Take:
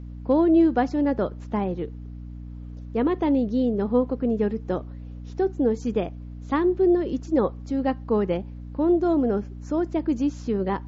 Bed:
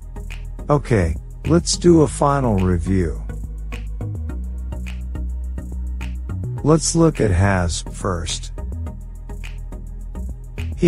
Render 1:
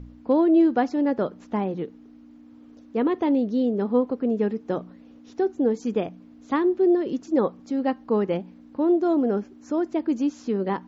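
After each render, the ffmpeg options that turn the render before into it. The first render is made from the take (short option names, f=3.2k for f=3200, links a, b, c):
-af "bandreject=f=60:t=h:w=4,bandreject=f=120:t=h:w=4,bandreject=f=180:t=h:w=4"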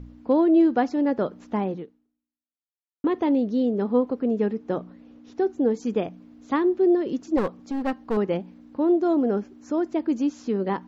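-filter_complex "[0:a]asettb=1/sr,asplit=3[a][b][c];[a]atrim=end=4.464[d];[b]atrim=start=4.46:end=5.41,asetpts=PTS-STARTPTS,afade=t=in:d=0.004:c=qsin,afade=t=out:st=0.946:d=0.004:c=qsin,highshelf=f=5.6k:g=-6.5[e];[c]atrim=start=5.406[f];[d][e]acrossfade=d=0.004:c1=hsin:c2=qsin[g];[g][f]acrossfade=d=0.004:c1=qsin:c2=hsin,asettb=1/sr,asplit=3[h][i][j];[h]atrim=end=7.374[k];[i]atrim=start=7.37:end=8.17,asetpts=PTS-STARTPTS,afade=t=in:d=0.004:c=qsin,afade=t=out:st=0.796:d=0.004:c=qsin,aeval=exprs='clip(val(0),-1,0.0447)':c=same[l];[j]atrim=start=8.166[m];[k][l]acrossfade=d=0.004:c1=hsin:c2=qsin[n];[n][m]acrossfade=d=0.004:c1=qsin:c2=hsin,asplit=2[o][p];[o]atrim=end=3.04,asetpts=PTS-STARTPTS,afade=t=out:st=1.73:d=1.31:c=exp[q];[p]atrim=start=3.04,asetpts=PTS-STARTPTS,afade=t=in:d=0.004:c=hsin[r];[q][r]concat=n=2:v=0:a=1"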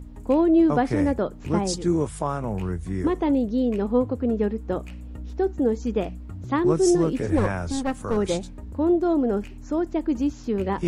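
-filter_complex "[1:a]volume=-10.5dB[a];[0:a][a]amix=inputs=2:normalize=0"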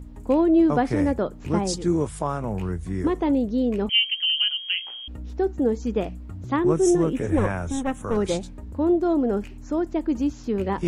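-filter_complex "[0:a]asettb=1/sr,asplit=3[a][b][c];[a]atrim=end=3.894[d];[b]atrim=start=3.89:end=5.08,asetpts=PTS-STARTPTS,afade=t=in:d=0.004:c=qsin,afade=t=out:st=1.186:d=0.004:c=qsin,lowpass=f=2.8k:t=q:w=0.5098,lowpass=f=2.8k:t=q:w=0.6013,lowpass=f=2.8k:t=q:w=0.9,lowpass=f=2.8k:t=q:w=2.563,afreqshift=-3300[e];[c]atrim=start=5.076[f];[d][e]acrossfade=d=0.004:c1=hsin:c2=qsin[g];[g][f]acrossfade=d=0.004:c1=qsin:c2=hsin,asettb=1/sr,asplit=3[h][i][j];[h]atrim=end=6.564[k];[i]atrim=start=6.56:end=8.15,asetpts=PTS-STARTPTS,afade=t=in:d=0.004:c=qsin,afade=t=out:st=1.586:d=0.004:c=qsin,asuperstop=centerf=4600:order=4:qfactor=2.4[l];[j]atrim=start=8.146[m];[k][l]acrossfade=d=0.004:c1=hsin:c2=qsin[n];[n][m]acrossfade=d=0.004:c1=qsin:c2=hsin"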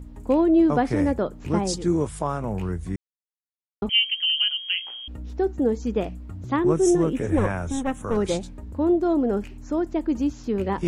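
-filter_complex "[0:a]asplit=3[a][b][c];[a]atrim=end=2.96,asetpts=PTS-STARTPTS,afade=t=out:st=2.956:d=0.004:c=hsin[d];[b]atrim=start=2.96:end=3.82,asetpts=PTS-STARTPTS,volume=0[e];[c]atrim=start=3.82,asetpts=PTS-STARTPTS,afade=t=in:d=0.004:c=hsin[f];[d][e][f]concat=n=3:v=0:a=1"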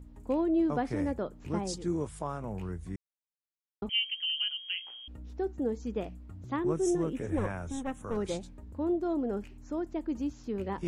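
-af "volume=-9.5dB"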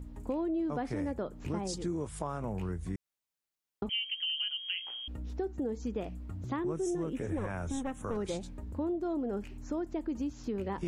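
-filter_complex "[0:a]asplit=2[a][b];[b]alimiter=level_in=3.5dB:limit=-24dB:level=0:latency=1,volume=-3.5dB,volume=-2dB[c];[a][c]amix=inputs=2:normalize=0,acompressor=threshold=-33dB:ratio=3"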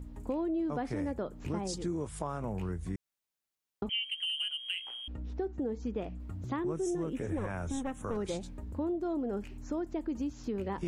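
-filter_complex "[0:a]asettb=1/sr,asplit=3[a][b][c];[a]atrim=end=4.044[d];[b]atrim=start=4.04:end=6.2,asetpts=PTS-STARTPTS,afade=t=in:d=0.004:c=qsin,afade=t=out:st=2.156:d=0.004:c=qsin,adynamicsmooth=sensitivity=7:basefreq=5.7k[e];[c]atrim=start=6.196[f];[d][e]acrossfade=d=0.004:c1=hsin:c2=qsin[g];[g][f]acrossfade=d=0.004:c1=qsin:c2=hsin"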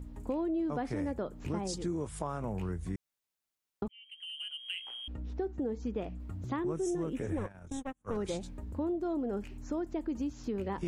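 -filter_complex "[0:a]asplit=3[a][b][c];[a]afade=t=out:st=7.42:d=0.02[d];[b]agate=range=-34dB:threshold=-35dB:ratio=16:release=100:detection=peak,afade=t=in:st=7.42:d=0.02,afade=t=out:st=8.07:d=0.02[e];[c]afade=t=in:st=8.07:d=0.02[f];[d][e][f]amix=inputs=3:normalize=0,asplit=2[g][h];[g]atrim=end=3.88,asetpts=PTS-STARTPTS,afade=t=out:st=3.876:d=0.004:c=hsin[i];[h]atrim=start=3.88,asetpts=PTS-STARTPTS,afade=t=in:d=1.16[j];[i][j]concat=n=2:v=0:a=1"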